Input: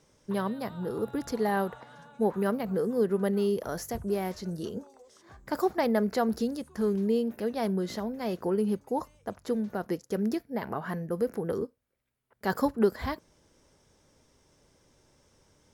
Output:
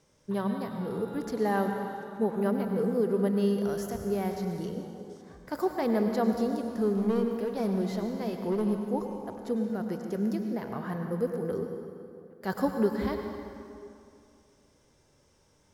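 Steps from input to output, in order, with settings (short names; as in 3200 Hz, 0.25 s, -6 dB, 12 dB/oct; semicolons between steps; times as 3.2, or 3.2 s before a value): harmonic-percussive split percussive -6 dB; 6.96–8.71 hard clip -25 dBFS, distortion -20 dB; on a send: reverb RT60 2.6 s, pre-delay 88 ms, DRR 4.5 dB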